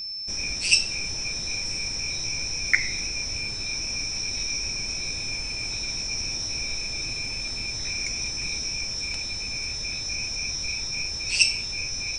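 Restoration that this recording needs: band-stop 5.3 kHz, Q 30

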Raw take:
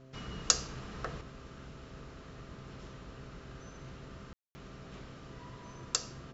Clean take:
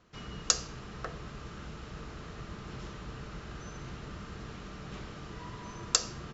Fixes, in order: de-hum 131.6 Hz, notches 5; room tone fill 4.33–4.55 s; gain correction +6 dB, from 1.21 s

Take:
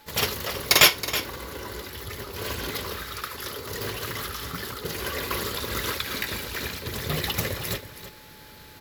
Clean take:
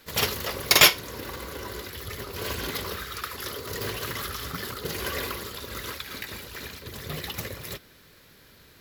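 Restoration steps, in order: band-stop 860 Hz, Q 30; inverse comb 323 ms -12.5 dB; trim 0 dB, from 5.31 s -6.5 dB

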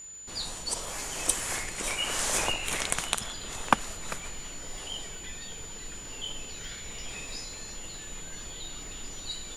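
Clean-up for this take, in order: de-click; band-stop 7 kHz, Q 30

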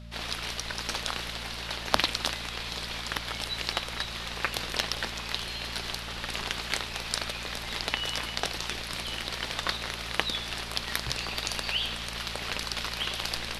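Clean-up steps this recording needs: de-hum 57.4 Hz, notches 4; band-stop 600 Hz, Q 30

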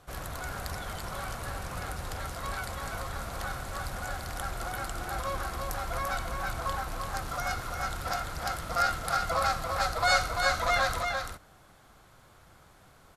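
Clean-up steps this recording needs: inverse comb 341 ms -5 dB

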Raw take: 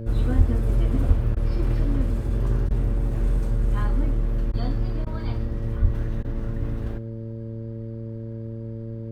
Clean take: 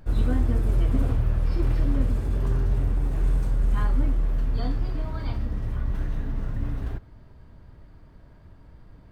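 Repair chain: de-hum 112.9 Hz, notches 5; de-plosive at 0.37/1.07/5.81 s; interpolate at 1.35/2.69/4.52/5.05/6.23 s, 14 ms; inverse comb 111 ms -21 dB

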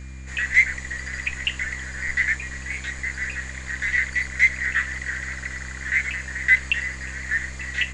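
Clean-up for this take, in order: de-hum 65.2 Hz, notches 5; band-stop 2.4 kHz, Q 30

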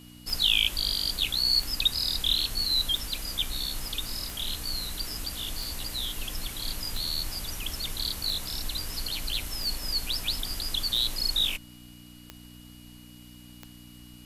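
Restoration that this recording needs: de-click; de-hum 60.4 Hz, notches 5; band-stop 2.9 kHz, Q 30

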